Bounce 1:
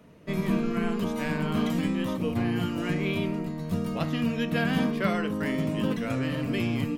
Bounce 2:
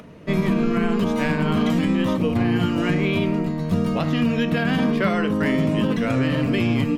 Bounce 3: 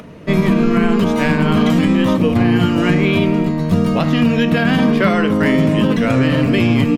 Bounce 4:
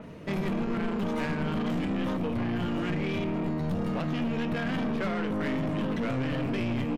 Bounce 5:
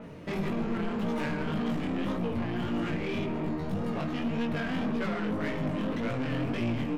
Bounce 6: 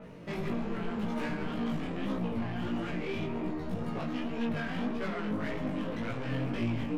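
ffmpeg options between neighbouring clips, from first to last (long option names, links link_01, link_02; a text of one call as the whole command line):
ffmpeg -i in.wav -af "highshelf=frequency=9000:gain=-11.5,alimiter=limit=-20dB:level=0:latency=1:release=54,acompressor=mode=upward:threshold=-48dB:ratio=2.5,volume=8.5dB" out.wav
ffmpeg -i in.wav -af "aecho=1:1:248:0.126,volume=6.5dB" out.wav
ffmpeg -i in.wav -af "alimiter=limit=-9.5dB:level=0:latency=1:release=345,aeval=exprs='(tanh(10*val(0)+0.35)-tanh(0.35))/10':channel_layout=same,adynamicequalizer=threshold=0.00631:dfrequency=3600:dqfactor=0.7:tfrequency=3600:tqfactor=0.7:attack=5:release=100:ratio=0.375:range=2.5:mode=cutabove:tftype=highshelf,volume=-6dB" out.wav
ffmpeg -i in.wav -filter_complex "[0:a]flanger=delay=17:depth=6.6:speed=1.8,asplit=2[link_01][link_02];[link_02]asoftclip=type=hard:threshold=-33dB,volume=-6dB[link_03];[link_01][link_03]amix=inputs=2:normalize=0,volume=-1dB" out.wav
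ffmpeg -i in.wav -af "flanger=delay=15.5:depth=3:speed=1.4" out.wav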